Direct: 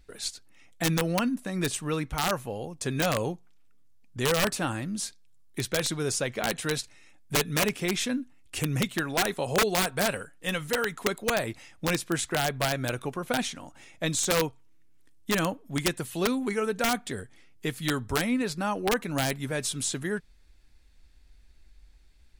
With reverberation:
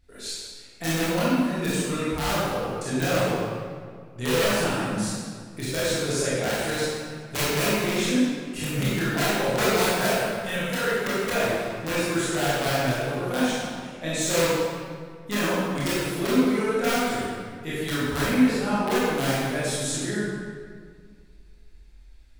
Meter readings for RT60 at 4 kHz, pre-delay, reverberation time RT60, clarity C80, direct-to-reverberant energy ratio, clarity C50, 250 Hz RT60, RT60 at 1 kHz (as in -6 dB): 1.3 s, 21 ms, 1.9 s, -2.0 dB, -10.5 dB, -4.5 dB, 2.3 s, 1.8 s